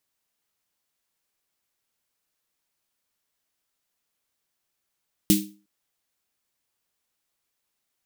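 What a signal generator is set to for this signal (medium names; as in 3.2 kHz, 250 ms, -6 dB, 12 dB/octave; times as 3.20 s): snare drum length 0.36 s, tones 200 Hz, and 310 Hz, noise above 2.6 kHz, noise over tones -3 dB, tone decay 0.37 s, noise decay 0.29 s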